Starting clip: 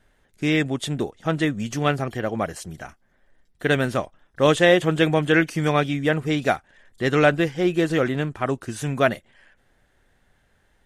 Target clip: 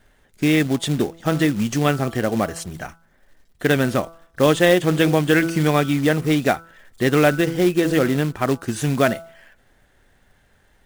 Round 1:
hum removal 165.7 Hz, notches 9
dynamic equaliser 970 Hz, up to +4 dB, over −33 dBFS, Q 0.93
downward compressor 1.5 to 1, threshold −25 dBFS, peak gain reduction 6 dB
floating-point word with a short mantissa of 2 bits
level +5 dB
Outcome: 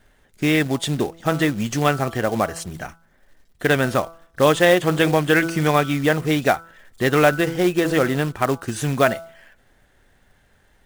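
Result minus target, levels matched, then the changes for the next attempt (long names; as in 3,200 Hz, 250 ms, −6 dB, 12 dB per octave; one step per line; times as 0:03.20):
1,000 Hz band +3.0 dB
change: dynamic equaliser 240 Hz, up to +4 dB, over −33 dBFS, Q 0.93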